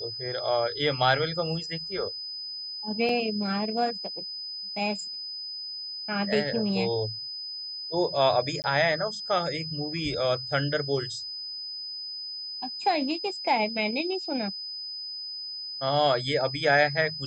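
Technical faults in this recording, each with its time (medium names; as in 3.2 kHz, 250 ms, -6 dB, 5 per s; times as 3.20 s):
whine 5 kHz -34 dBFS
3.09 s: dropout 2.3 ms
8.62–8.64 s: dropout 19 ms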